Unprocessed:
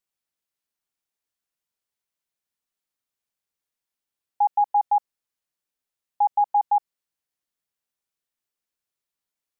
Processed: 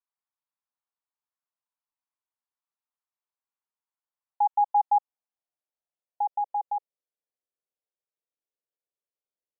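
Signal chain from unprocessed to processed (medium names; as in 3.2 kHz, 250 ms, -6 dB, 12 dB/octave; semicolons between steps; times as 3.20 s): band-pass sweep 1 kHz -> 500 Hz, 4.22–6.88 s; dynamic bell 590 Hz, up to -3 dB, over -32 dBFS, Q 1.6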